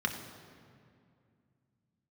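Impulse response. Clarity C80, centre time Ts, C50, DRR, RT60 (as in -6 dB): 8.5 dB, 32 ms, 7.5 dB, 3.0 dB, 2.3 s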